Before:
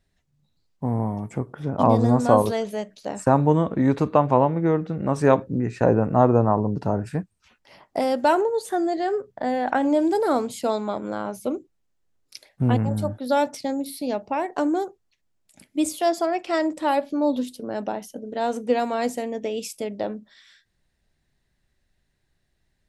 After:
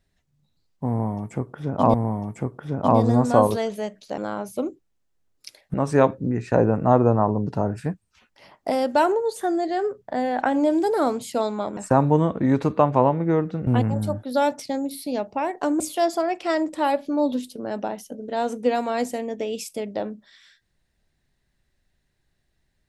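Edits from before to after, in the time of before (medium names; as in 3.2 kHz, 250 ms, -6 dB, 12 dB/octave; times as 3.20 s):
0.89–1.94 s: loop, 2 plays
3.13–5.03 s: swap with 11.06–12.62 s
14.75–15.84 s: delete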